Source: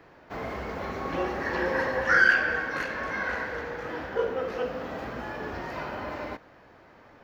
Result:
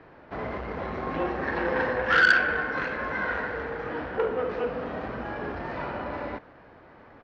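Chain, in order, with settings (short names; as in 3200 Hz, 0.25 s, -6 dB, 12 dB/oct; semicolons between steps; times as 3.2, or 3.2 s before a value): pitch shift -0.5 st; air absorption 220 m; core saturation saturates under 1800 Hz; gain +3.5 dB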